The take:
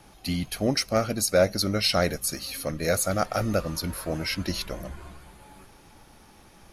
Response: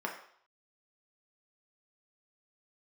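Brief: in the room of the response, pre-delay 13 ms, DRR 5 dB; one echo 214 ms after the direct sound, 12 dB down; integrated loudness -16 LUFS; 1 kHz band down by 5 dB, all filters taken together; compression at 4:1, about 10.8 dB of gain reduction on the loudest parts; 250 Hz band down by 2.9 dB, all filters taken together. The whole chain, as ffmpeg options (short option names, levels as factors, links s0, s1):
-filter_complex "[0:a]equalizer=f=250:t=o:g=-3.5,equalizer=f=1000:t=o:g=-8,acompressor=threshold=0.0282:ratio=4,aecho=1:1:214:0.251,asplit=2[s0][s1];[1:a]atrim=start_sample=2205,adelay=13[s2];[s1][s2]afir=irnorm=-1:irlink=0,volume=0.316[s3];[s0][s3]amix=inputs=2:normalize=0,volume=7.5"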